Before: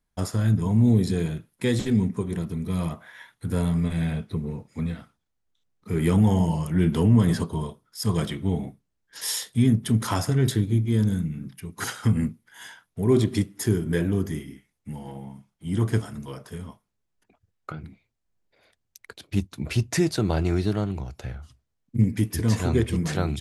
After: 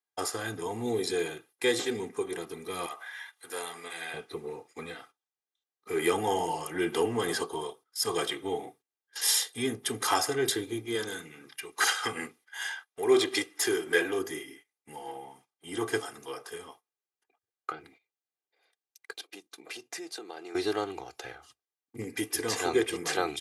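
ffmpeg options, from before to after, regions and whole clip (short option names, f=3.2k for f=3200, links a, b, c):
-filter_complex "[0:a]asettb=1/sr,asplit=3[a][b][c];[a]atrim=end=2.864[d];[b]atrim=start=2.86:end=4.14,asetpts=PTS-STARTPTS,afade=t=in:d=0.004:c=qsin,afade=t=out:st=1.276:d=0.004:c=qsin,highpass=f=1k:p=1,acompressor=mode=upward:threshold=-40dB:ratio=2.5:attack=3.2:release=140:knee=2.83:detection=peak[e];[c]atrim=start=4.136[f];[d][e]acrossfade=d=0.004:c1=hsin:c2=qsin[g];[g][f]acrossfade=d=0.004:c1=qsin:c2=hsin,asettb=1/sr,asplit=3[h][i][j];[h]atrim=end=10.954[k];[i]atrim=start=10.95:end=14.19,asetpts=PTS-STARTPTS,afade=t=in:d=0.004:c=qsin,afade=t=out:st=3.236:d=0.004:c=qsin,highshelf=f=2.4k:g=11.5,asplit=2[l][m];[m]highpass=f=720:p=1,volume=8dB,asoftclip=type=tanh:threshold=-8dB[n];[l][n]amix=inputs=2:normalize=0,lowpass=f=1.6k:p=1,volume=-6dB[o];[j]atrim=start=14.186[p];[k][o]acrossfade=d=0.004:c1=hsin:c2=qsin[q];[q][p]acrossfade=d=0.004:c1=qsin:c2=hsin,asettb=1/sr,asplit=3[r][s][t];[r]atrim=end=19.204[u];[s]atrim=start=19.2:end=20.55,asetpts=PTS-STARTPTS,afade=t=in:d=0.004:c=qsin,afade=t=out:st=1.346:d=0.004:c=qsin,highpass=f=180:w=0.5412,highpass=f=180:w=1.3066,acompressor=threshold=-42dB:ratio=3:attack=3.2:release=140:knee=1:detection=peak[v];[t]atrim=start=20.546[w];[u][v]acrossfade=d=0.004:c1=hsin:c2=qsin[x];[x][w]acrossfade=d=0.004:c1=qsin:c2=hsin,agate=range=-12dB:threshold=-48dB:ratio=16:detection=peak,highpass=490,aecho=1:1:2.5:0.69,volume=1.5dB"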